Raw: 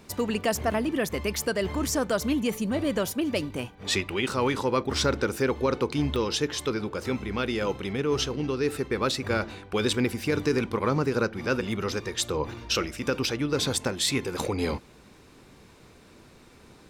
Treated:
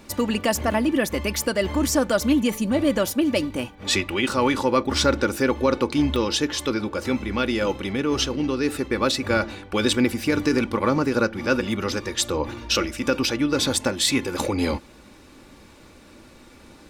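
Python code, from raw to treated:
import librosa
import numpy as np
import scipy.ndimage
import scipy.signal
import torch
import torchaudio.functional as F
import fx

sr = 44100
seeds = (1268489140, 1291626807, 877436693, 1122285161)

y = x + 0.44 * np.pad(x, (int(3.5 * sr / 1000.0), 0))[:len(x)]
y = F.gain(torch.from_numpy(y), 4.0).numpy()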